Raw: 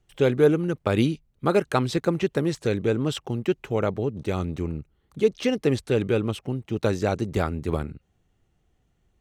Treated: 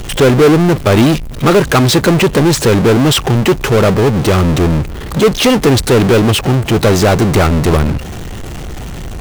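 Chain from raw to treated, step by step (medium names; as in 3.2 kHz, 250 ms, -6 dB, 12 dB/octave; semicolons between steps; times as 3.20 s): power-law waveshaper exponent 0.35; trim +5.5 dB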